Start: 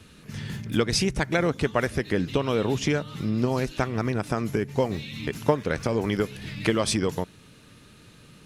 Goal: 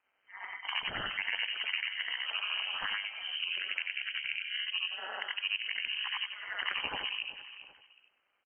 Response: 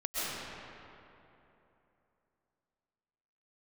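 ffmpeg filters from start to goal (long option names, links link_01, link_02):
-filter_complex "[0:a]afftfilt=real='re':imag='-im':win_size=8192:overlap=0.75,highpass=620,afftdn=noise_reduction=26:noise_floor=-45,asplit=2[link_01][link_02];[link_02]aecho=0:1:387|774:0.0708|0.0212[link_03];[link_01][link_03]amix=inputs=2:normalize=0,tremolo=f=300:d=0.919,asetrate=29433,aresample=44100,atempo=1.49831,asplit=2[link_04][link_05];[link_05]adelay=97,lowpass=frequency=2200:poles=1,volume=-14dB,asplit=2[link_06][link_07];[link_07]adelay=97,lowpass=frequency=2200:poles=1,volume=0.49,asplit=2[link_08][link_09];[link_09]adelay=97,lowpass=frequency=2200:poles=1,volume=0.49,asplit=2[link_10][link_11];[link_11]adelay=97,lowpass=frequency=2200:poles=1,volume=0.49,asplit=2[link_12][link_13];[link_13]adelay=97,lowpass=frequency=2200:poles=1,volume=0.49[link_14];[link_06][link_08][link_10][link_12][link_14]amix=inputs=5:normalize=0[link_15];[link_04][link_15]amix=inputs=2:normalize=0,acontrast=71,lowpass=frequency=2700:width_type=q:width=0.5098,lowpass=frequency=2700:width_type=q:width=0.6013,lowpass=frequency=2700:width_type=q:width=0.9,lowpass=frequency=2700:width_type=q:width=2.563,afreqshift=-3200,acompressor=threshold=-43dB:ratio=3,volume=8dB"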